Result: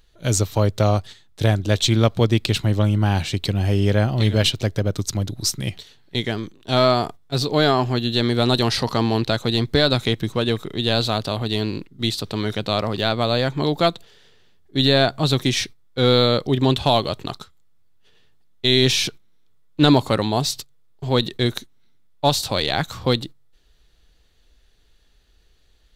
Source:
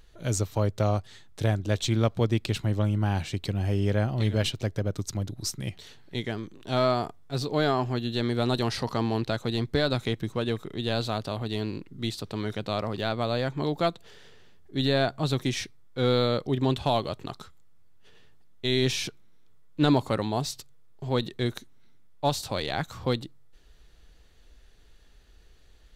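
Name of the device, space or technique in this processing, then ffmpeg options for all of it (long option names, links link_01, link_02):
presence and air boost: -af "equalizer=frequency=3800:width_type=o:width=0.99:gain=4.5,highshelf=frequency=11000:gain=5,agate=range=-10dB:threshold=-40dB:ratio=16:detection=peak,volume=7dB"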